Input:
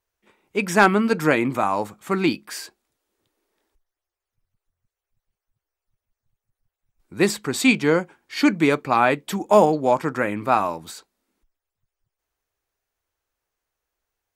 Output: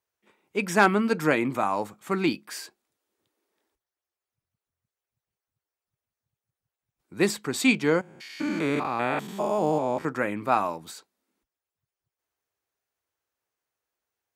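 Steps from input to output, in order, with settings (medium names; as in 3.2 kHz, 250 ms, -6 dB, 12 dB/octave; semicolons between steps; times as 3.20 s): 8.01–10.05 s: spectrogram pixelated in time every 200 ms; high-pass 100 Hz 12 dB/octave; trim -4 dB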